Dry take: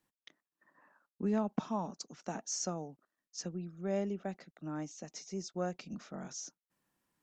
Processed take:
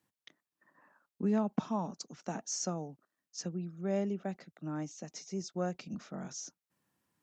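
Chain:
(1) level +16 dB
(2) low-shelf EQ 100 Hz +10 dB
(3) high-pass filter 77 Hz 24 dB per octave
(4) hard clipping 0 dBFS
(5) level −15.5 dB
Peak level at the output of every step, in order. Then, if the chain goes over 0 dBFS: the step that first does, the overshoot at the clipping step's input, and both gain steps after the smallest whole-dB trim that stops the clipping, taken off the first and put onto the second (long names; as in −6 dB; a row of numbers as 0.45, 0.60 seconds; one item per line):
−4.0, −1.5, −2.0, −2.0, −17.5 dBFS
no step passes full scale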